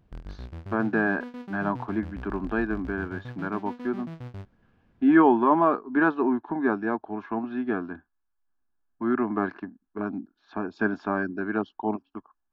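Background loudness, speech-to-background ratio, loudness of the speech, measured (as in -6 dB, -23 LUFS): -41.0 LUFS, 14.5 dB, -26.5 LUFS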